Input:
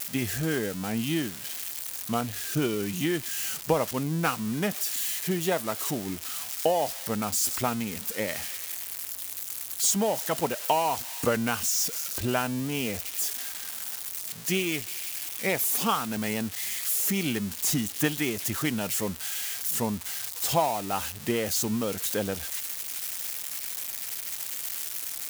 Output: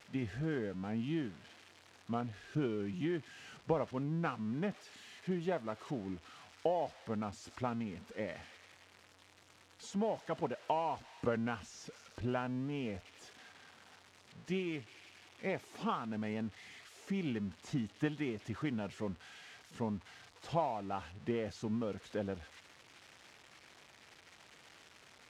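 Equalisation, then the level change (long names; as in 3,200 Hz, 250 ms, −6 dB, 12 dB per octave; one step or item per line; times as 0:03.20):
head-to-tape spacing loss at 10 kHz 31 dB
−7.0 dB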